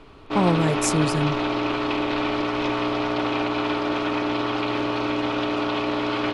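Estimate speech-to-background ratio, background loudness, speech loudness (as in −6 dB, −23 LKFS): 0.5 dB, −24.5 LKFS, −24.0 LKFS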